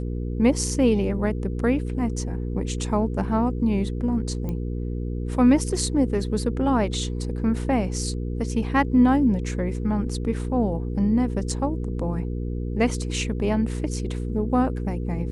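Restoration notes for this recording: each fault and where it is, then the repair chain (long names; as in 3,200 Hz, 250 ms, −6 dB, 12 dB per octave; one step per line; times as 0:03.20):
mains hum 60 Hz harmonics 8 −28 dBFS
0:04.49: click −19 dBFS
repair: click removal
hum removal 60 Hz, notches 8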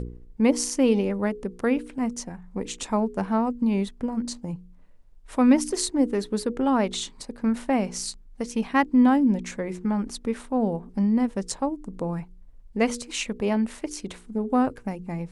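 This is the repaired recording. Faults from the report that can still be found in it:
none of them is left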